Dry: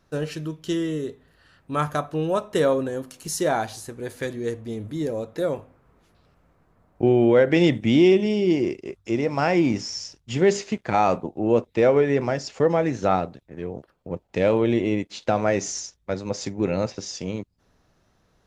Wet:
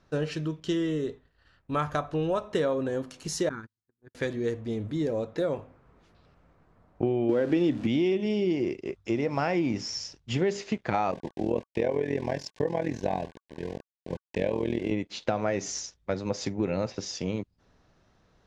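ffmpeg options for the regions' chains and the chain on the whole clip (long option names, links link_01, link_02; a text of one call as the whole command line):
ffmpeg -i in.wav -filter_complex "[0:a]asettb=1/sr,asplit=3[link_01][link_02][link_03];[link_01]atrim=end=0.604[link_04];[link_02]atrim=start=0.6:end=2.46,asetpts=PTS-STARTPTS,afade=type=in:duration=0.004:curve=qsin,afade=type=out:start_time=1.856:duration=0.004:curve=qsin,asubboost=boost=6.5:cutoff=86,agate=range=-33dB:threshold=-50dB:ratio=3:release=100:detection=peak[link_05];[link_03]atrim=start=2.456[link_06];[link_04][link_05]acrossfade=duration=0.004:curve1=hsin:curve2=qsin[link_07];[link_07][link_06]acrossfade=duration=0.004:curve1=qsin:curve2=hsin,asettb=1/sr,asplit=3[link_08][link_09][link_10];[link_08]atrim=end=3.494[link_11];[link_09]atrim=start=3.49:end=4.15,asetpts=PTS-STARTPTS,afade=type=in:duration=0.004:curve=qsin,afade=type=out:start_time=0.656:duration=0.004:curve=qsin,asuperstop=centerf=690:order=4:qfactor=0.58,agate=range=-46dB:threshold=-33dB:ratio=16:release=100:detection=peak,highshelf=frequency=1800:width_type=q:width=1.5:gain=-13.5[link_12];[link_10]atrim=start=4.146[link_13];[link_11][link_12]acrossfade=duration=0.004:curve1=hsin:curve2=qsin[link_14];[link_14][link_13]acrossfade=duration=0.004:curve1=qsin:curve2=hsin,asettb=1/sr,asplit=3[link_15][link_16][link_17];[link_15]atrim=end=7.294[link_18];[link_16]atrim=start=7.29:end=7.87,asetpts=PTS-STARTPTS,afade=type=in:duration=0.004:curve=qsin,afade=type=out:start_time=0.576:duration=0.004:curve=qsin,aeval=exprs='val(0)+0.5*0.0316*sgn(val(0))':channel_layout=same,equalizer=frequency=290:width=1.8:gain=10,bandreject=frequency=2100:width=11[link_19];[link_17]atrim=start=7.866[link_20];[link_18][link_19]acrossfade=duration=0.004:curve1=hsin:curve2=qsin[link_21];[link_21][link_20]acrossfade=duration=0.004:curve1=qsin:curve2=hsin,asettb=1/sr,asplit=3[link_22][link_23][link_24];[link_22]atrim=end=11.114[link_25];[link_23]atrim=start=11.11:end=14.91,asetpts=PTS-STARTPTS,afade=type=in:duration=0.004:curve=qsin,afade=type=out:start_time=3.796:duration=0.004:curve=qsin,aeval=exprs='val(0)*gte(abs(val(0)),0.0141)':channel_layout=same,asuperstop=centerf=1300:order=20:qfactor=3.8,tremolo=f=42:d=0.857[link_26];[link_24]atrim=start=14.906[link_27];[link_25][link_26]acrossfade=duration=0.004:curve1=hsin:curve2=qsin[link_28];[link_28][link_27]acrossfade=duration=0.004:curve1=qsin:curve2=hsin,lowpass=5900,acompressor=threshold=-24dB:ratio=4" out.wav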